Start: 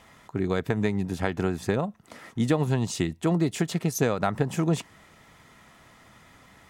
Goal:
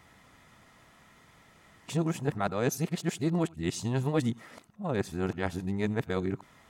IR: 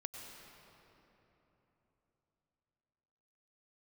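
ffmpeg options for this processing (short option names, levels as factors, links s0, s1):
-filter_complex "[0:a]areverse[s0];[1:a]atrim=start_sample=2205,atrim=end_sample=3969[s1];[s0][s1]afir=irnorm=-1:irlink=0"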